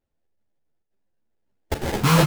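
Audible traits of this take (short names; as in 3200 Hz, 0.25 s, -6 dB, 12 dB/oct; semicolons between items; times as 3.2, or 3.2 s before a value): chopped level 1.1 Hz, depth 60%, duty 90%; aliases and images of a low sample rate 1200 Hz, jitter 20%; a shimmering, thickened sound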